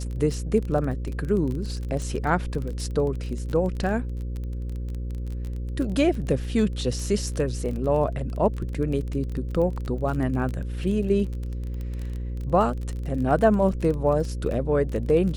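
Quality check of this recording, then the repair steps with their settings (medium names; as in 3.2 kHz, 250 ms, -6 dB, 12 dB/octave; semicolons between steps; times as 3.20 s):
buzz 60 Hz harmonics 9 -30 dBFS
crackle 24 per s -30 dBFS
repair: de-click; de-hum 60 Hz, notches 9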